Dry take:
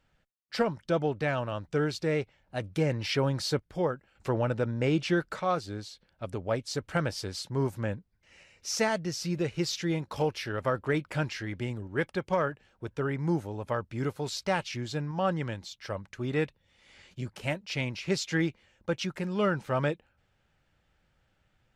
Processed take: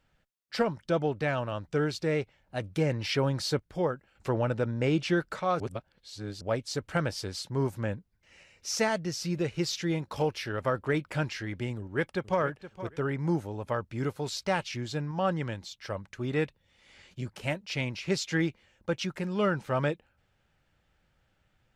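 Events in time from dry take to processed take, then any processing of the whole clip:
5.60–6.41 s: reverse
11.77–12.41 s: echo throw 470 ms, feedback 20%, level -13.5 dB

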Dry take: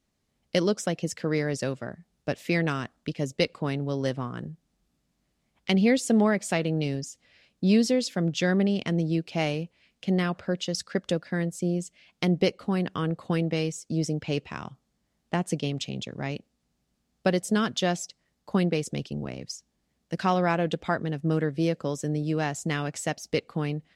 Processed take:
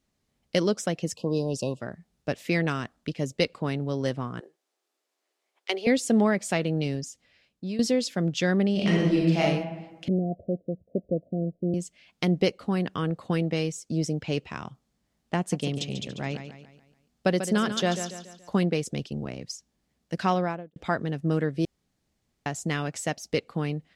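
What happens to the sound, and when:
1.15–1.80 s: spectral selection erased 1.1–2.5 kHz
4.40–5.87 s: Chebyshev high-pass 370 Hz, order 4
7.05–7.79 s: fade out, to -15 dB
8.72–9.40 s: reverb throw, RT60 1.2 s, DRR -5 dB
10.08–11.74 s: Chebyshev low-pass 710 Hz, order 10
15.38–18.64 s: feedback delay 142 ms, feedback 43%, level -9.5 dB
20.28–20.76 s: studio fade out
21.65–22.46 s: room tone

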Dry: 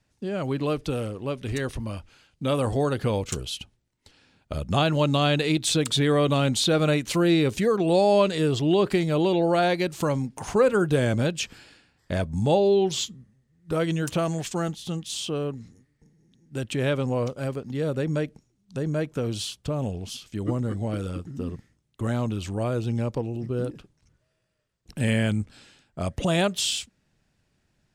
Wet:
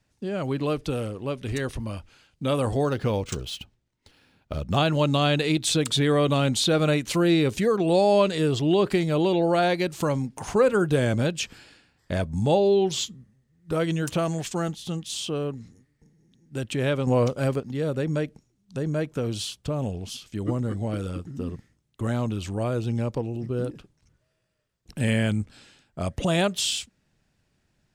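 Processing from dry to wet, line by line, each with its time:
2.85–4.77 s: decimation joined by straight lines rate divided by 3×
17.07–17.60 s: gain +5 dB

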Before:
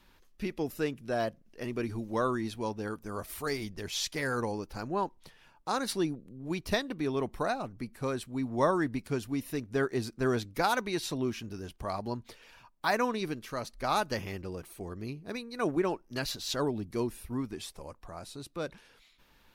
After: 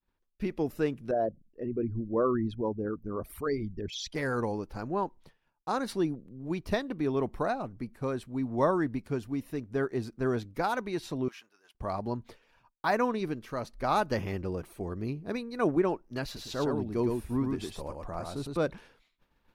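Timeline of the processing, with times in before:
1.11–4.15 s: resonances exaggerated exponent 2
11.28–11.75 s: Chebyshev high-pass 1.2 kHz
16.24–18.57 s: delay 109 ms -4 dB
whole clip: gain riding 2 s; expander -47 dBFS; treble shelf 2.2 kHz -10.5 dB; trim +1.5 dB

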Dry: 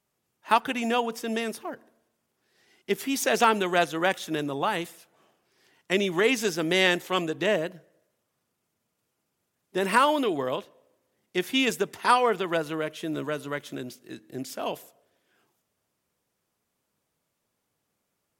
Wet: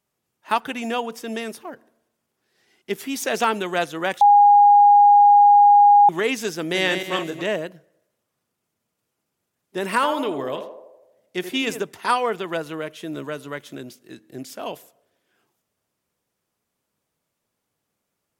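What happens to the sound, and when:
4.21–6.09 s: bleep 819 Hz -8.5 dBFS
6.61–7.42 s: backward echo that repeats 140 ms, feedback 46%, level -6.5 dB
9.94–11.83 s: band-passed feedback delay 82 ms, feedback 62%, band-pass 590 Hz, level -6.5 dB

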